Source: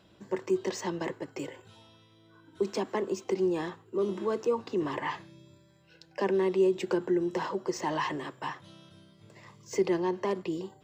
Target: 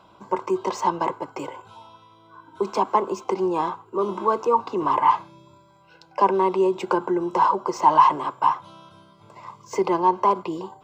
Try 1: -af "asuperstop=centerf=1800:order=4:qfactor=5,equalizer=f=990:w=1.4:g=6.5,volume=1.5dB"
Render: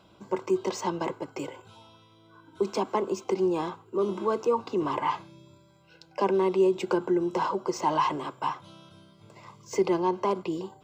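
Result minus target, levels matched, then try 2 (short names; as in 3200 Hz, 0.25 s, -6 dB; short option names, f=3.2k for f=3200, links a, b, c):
1000 Hz band -4.5 dB
-af "asuperstop=centerf=1800:order=4:qfactor=5,equalizer=f=990:w=1.4:g=18,volume=1.5dB"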